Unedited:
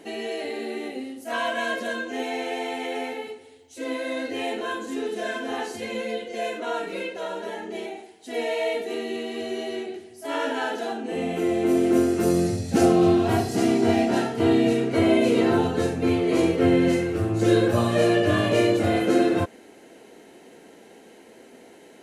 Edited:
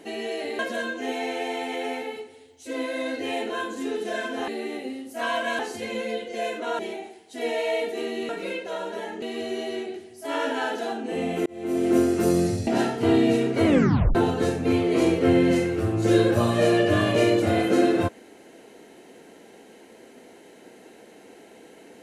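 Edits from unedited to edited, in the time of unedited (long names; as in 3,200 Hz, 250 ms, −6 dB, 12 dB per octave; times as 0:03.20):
0:00.59–0:01.70: move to 0:05.59
0:06.79–0:07.72: move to 0:09.22
0:11.46–0:11.95: fade in
0:12.67–0:14.04: remove
0:15.03: tape stop 0.49 s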